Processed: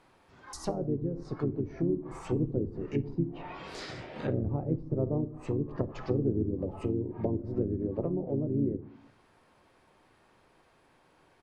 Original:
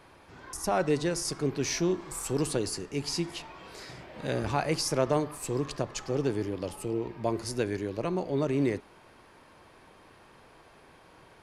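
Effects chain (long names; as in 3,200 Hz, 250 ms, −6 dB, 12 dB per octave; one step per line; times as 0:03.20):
speech leveller within 5 dB 2 s
treble cut that deepens with the level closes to 340 Hz, closed at −26 dBFS
on a send at −13 dB: convolution reverb RT60 0.70 s, pre-delay 5 ms
on the sum: noise reduction from a noise print of the clip's start 7 dB
pitch-shifted copies added −4 semitones −5 dB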